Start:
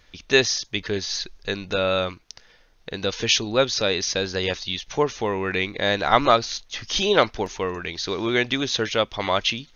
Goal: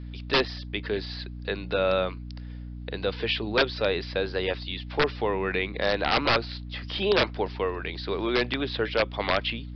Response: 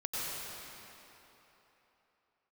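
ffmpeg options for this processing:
-filter_complex "[0:a]highpass=frequency=60:poles=1,equalizer=frequency=440:width=0.54:gain=3,acrossover=split=330|3300[link_01][link_02][link_03];[link_01]flanger=delay=9.5:depth=7.5:regen=51:speed=0.29:shape=triangular[link_04];[link_03]acompressor=threshold=-39dB:ratio=6[link_05];[link_04][link_02][link_05]amix=inputs=3:normalize=0,aeval=exprs='val(0)+0.0224*(sin(2*PI*60*n/s)+sin(2*PI*2*60*n/s)/2+sin(2*PI*3*60*n/s)/3+sin(2*PI*4*60*n/s)/4+sin(2*PI*5*60*n/s)/5)':channel_layout=same,aeval=exprs='(mod(3.16*val(0)+1,2)-1)/3.16':channel_layout=same,aresample=11025,aresample=44100,volume=-3.5dB"

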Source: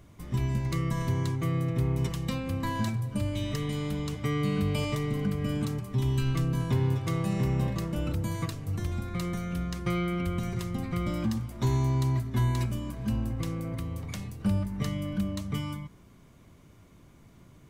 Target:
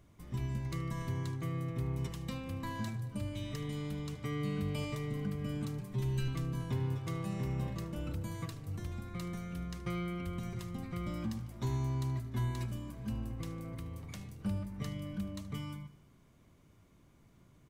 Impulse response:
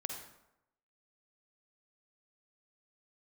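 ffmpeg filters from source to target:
-filter_complex "[0:a]asettb=1/sr,asplit=3[link_01][link_02][link_03];[link_01]atrim=end=5.794[link_04];[link_02]atrim=start=5.79:end=6.28,asetpts=PTS-STARTPTS,afade=type=in:duration=0.004:curve=qsin,afade=type=out:start_time=0.486:duration=0.004:curve=qsin,aecho=1:1:5.6:0.8,atrim=end_sample=21609[link_05];[link_03]atrim=start=6.276[link_06];[link_04][link_05]acrossfade=duration=0.004:curve1=hsin:curve2=qsin[link_07];[link_07][link_06]acrossfade=duration=0.004:curve1=qsin:curve2=hsin,asplit=2[link_08][link_09];[link_09]aecho=0:1:75|150|225|300|375|450:0.141|0.0833|0.0492|0.029|0.0171|0.0101[link_10];[link_08][link_10]amix=inputs=2:normalize=0,volume=-8.5dB"

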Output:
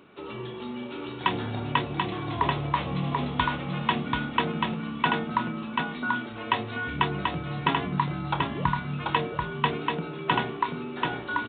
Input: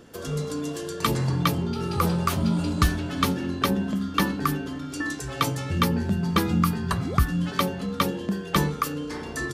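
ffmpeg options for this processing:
ffmpeg -i in.wav -filter_complex "[0:a]highpass=frequency=510:poles=1,asetrate=36603,aresample=44100,asplit=2[link_01][link_02];[link_02]adelay=28,volume=-11.5dB[link_03];[link_01][link_03]amix=inputs=2:normalize=0,asplit=2[link_04][link_05];[link_05]aecho=0:1:736:0.668[link_06];[link_04][link_06]amix=inputs=2:normalize=0,aresample=8000,aresample=44100" out.wav

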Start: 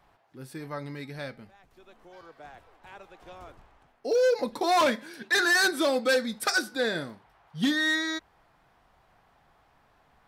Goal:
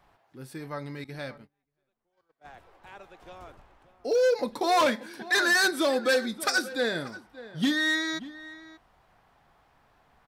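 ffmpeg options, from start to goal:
ffmpeg -i in.wav -filter_complex "[0:a]asplit=2[link_01][link_02];[link_02]adelay=583.1,volume=-16dB,highshelf=frequency=4000:gain=-13.1[link_03];[link_01][link_03]amix=inputs=2:normalize=0,asettb=1/sr,asplit=3[link_04][link_05][link_06];[link_04]atrim=end=1.044[link_07];[link_05]atrim=start=1.04:end=2.46,asetpts=PTS-STARTPTS,afade=type=in:duration=0.004:curve=qsin,afade=type=out:start_time=1.416:duration=0.004:curve=qsin,agate=range=-29dB:threshold=-44dB:ratio=16:detection=peak[link_08];[link_06]atrim=start=2.456[link_09];[link_07][link_08]acrossfade=duration=0.004:curve1=hsin:curve2=qsin[link_10];[link_10][link_09]acrossfade=duration=0.004:curve1=qsin:curve2=hsin" out.wav

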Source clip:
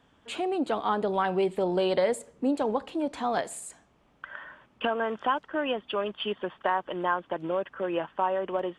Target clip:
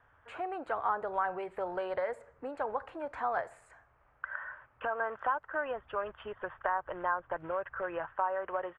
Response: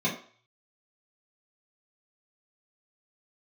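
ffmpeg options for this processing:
-filter_complex "[0:a]asettb=1/sr,asplit=3[link_01][link_02][link_03];[link_01]atrim=end=5.714[link_04];[link_02]atrim=start=5.71:end=8.13,asetpts=PTS-STARTPTS,afade=type=in:duration=0.004:curve=qsin,afade=type=out:start_time=2.416:duration=0.004:curve=qsin,lowshelf=frequency=140:gain=11.5[link_05];[link_03]atrim=start=8.126[link_06];[link_04][link_05]acrossfade=duration=0.004:curve1=hsin:curve2=qsin[link_07];[link_07][link_06]acrossfade=duration=0.004:curve1=qsin:curve2=hsin,acrossover=split=1200|6200[link_08][link_09][link_10];[link_08]acompressor=threshold=-27dB:ratio=4[link_11];[link_09]acompressor=threshold=-41dB:ratio=4[link_12];[link_10]acompressor=threshold=-54dB:ratio=4[link_13];[link_11][link_12][link_13]amix=inputs=3:normalize=0,firequalizer=gain_entry='entry(110,0);entry(190,-20);entry(520,-4);entry(1500,5);entry(3400,-19)':delay=0.05:min_phase=1"

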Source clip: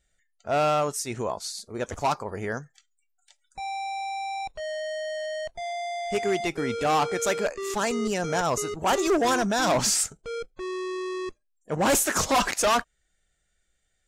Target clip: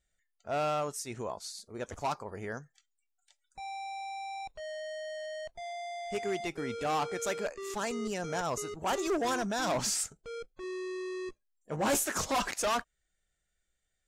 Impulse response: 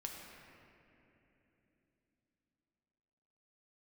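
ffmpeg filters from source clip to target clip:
-filter_complex "[0:a]asettb=1/sr,asplit=3[link_01][link_02][link_03];[link_01]atrim=end=10.624[link_04];[link_02]atrim=start=10.62:end=12.05,asetpts=PTS-STARTPTS,afade=type=in:duration=0.004:curve=qsin,afade=type=out:start_time=1.426:duration=0.004:curve=qsin,asplit=2[link_05][link_06];[link_06]adelay=14,volume=-6.5dB[link_07];[link_05][link_07]amix=inputs=2:normalize=0,atrim=end_sample=63063[link_08];[link_03]atrim=start=12.046[link_09];[link_04][link_08]acrossfade=duration=0.004:curve1=hsin:curve2=qsin[link_10];[link_10][link_09]acrossfade=duration=0.004:curve1=qsin:curve2=hsin,volume=-8dB"

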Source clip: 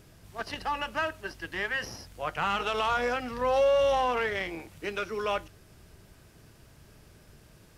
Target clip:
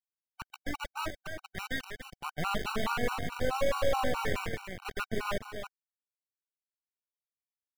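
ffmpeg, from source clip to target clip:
ffmpeg -i in.wav -filter_complex "[0:a]asettb=1/sr,asplit=3[link_01][link_02][link_03];[link_01]atrim=end=0.734[link_04];[link_02]atrim=start=0.73:end=1.58,asetpts=PTS-STARTPTS,afade=type=in:duration=0.004:curve=qsin,afade=type=out:start_time=0.846:duration=0.004:curve=qsin,bandreject=frequency=60:width_type=h:width=6,bandreject=frequency=120:width_type=h:width=6,bandreject=frequency=180:width_type=h:width=6,bandreject=frequency=240:width_type=h:width=6,bandreject=frequency=300:width_type=h:width=6,bandreject=frequency=360:width_type=h:width=6,bandreject=frequency=420:width_type=h:width=6,bandreject=frequency=480:width_type=h:width=6,bandreject=frequency=540:width_type=h:width=6,bandreject=frequency=600:width_type=h:width=6[link_05];[link_03]atrim=start=1.576[link_06];[link_04][link_05]acrossfade=duration=0.004:curve1=hsin:curve2=qsin[link_07];[link_07][link_06]acrossfade=duration=0.004:curve1=qsin:curve2=hsin,asplit=3[link_08][link_09][link_10];[link_08]afade=type=out:start_time=4.51:duration=0.02[link_11];[link_09]highpass=frequency=190:width=0.5412,highpass=frequency=190:width=1.3066,equalizer=frequency=220:width_type=q:width=4:gain=-6,equalizer=frequency=470:width_type=q:width=4:gain=6,equalizer=frequency=770:width_type=q:width=4:gain=6,equalizer=frequency=1300:width_type=q:width=4:gain=8,lowpass=frequency=9500:width=0.5412,lowpass=frequency=9500:width=1.3066,afade=type=in:start_time=4.51:duration=0.02,afade=type=out:start_time=5.06:duration=0.02[link_12];[link_10]afade=type=in:start_time=5.06:duration=0.02[link_13];[link_11][link_12][link_13]amix=inputs=3:normalize=0,asplit=2[link_14][link_15];[link_15]aecho=0:1:389|778|1167|1556|1945:0.168|0.0839|0.042|0.021|0.0105[link_16];[link_14][link_16]amix=inputs=2:normalize=0,acrusher=bits=4:mix=0:aa=0.000001,agate=range=-45dB:threshold=-36dB:ratio=16:detection=peak,bass=frequency=250:gain=12,treble=frequency=4000:gain=-8,aeval=exprs='max(val(0),0)':channel_layout=same,asplit=2[link_17][link_18];[link_18]aecho=0:1:290:0.422[link_19];[link_17][link_19]amix=inputs=2:normalize=0,afftfilt=real='re*gt(sin(2*PI*4.7*pts/sr)*(1-2*mod(floor(b*sr/1024/760),2)),0)':imag='im*gt(sin(2*PI*4.7*pts/sr)*(1-2*mod(floor(b*sr/1024/760),2)),0)':win_size=1024:overlap=0.75" out.wav

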